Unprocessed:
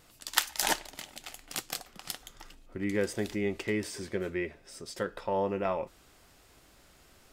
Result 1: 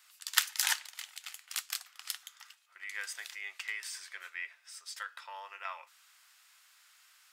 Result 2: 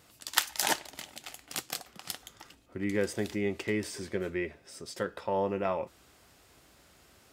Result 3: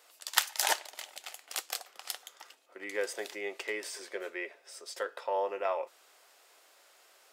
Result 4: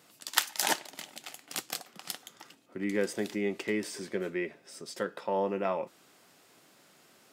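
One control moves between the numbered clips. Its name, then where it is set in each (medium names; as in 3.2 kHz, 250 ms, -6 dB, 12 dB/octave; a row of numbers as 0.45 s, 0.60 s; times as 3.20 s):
high-pass, cutoff frequency: 1.2 kHz, 52 Hz, 470 Hz, 150 Hz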